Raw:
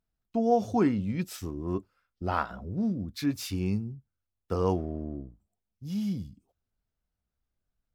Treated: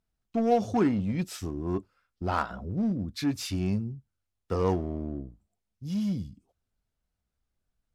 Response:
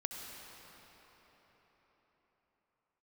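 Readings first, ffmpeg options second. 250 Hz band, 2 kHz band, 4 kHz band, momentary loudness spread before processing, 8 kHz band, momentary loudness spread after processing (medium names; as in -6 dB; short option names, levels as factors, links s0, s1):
+1.0 dB, +1.0 dB, +2.0 dB, 14 LU, +1.5 dB, 12 LU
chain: -filter_complex "[0:a]lowpass=11000,asplit=2[s0][s1];[s1]aeval=exprs='0.0398*(abs(mod(val(0)/0.0398+3,4)-2)-1)':c=same,volume=0.282[s2];[s0][s2]amix=inputs=2:normalize=0"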